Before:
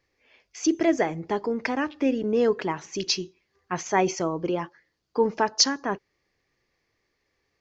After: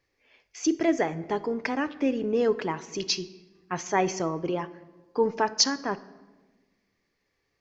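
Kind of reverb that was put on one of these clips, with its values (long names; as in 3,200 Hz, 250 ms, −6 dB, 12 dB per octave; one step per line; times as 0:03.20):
rectangular room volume 880 cubic metres, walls mixed, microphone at 0.3 metres
level −2 dB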